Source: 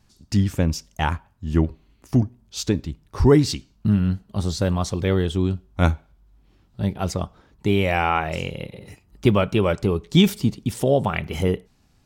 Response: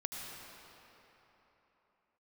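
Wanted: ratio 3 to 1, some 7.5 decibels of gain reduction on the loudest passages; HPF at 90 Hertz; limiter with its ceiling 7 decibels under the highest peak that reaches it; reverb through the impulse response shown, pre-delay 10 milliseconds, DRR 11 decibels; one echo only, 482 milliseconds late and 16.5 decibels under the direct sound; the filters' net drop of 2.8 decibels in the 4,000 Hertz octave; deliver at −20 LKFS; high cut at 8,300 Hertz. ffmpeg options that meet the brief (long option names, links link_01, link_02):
-filter_complex "[0:a]highpass=90,lowpass=8300,equalizer=frequency=4000:width_type=o:gain=-3.5,acompressor=threshold=-20dB:ratio=3,alimiter=limit=-15dB:level=0:latency=1,aecho=1:1:482:0.15,asplit=2[link_01][link_02];[1:a]atrim=start_sample=2205,adelay=10[link_03];[link_02][link_03]afir=irnorm=-1:irlink=0,volume=-12dB[link_04];[link_01][link_04]amix=inputs=2:normalize=0,volume=8.5dB"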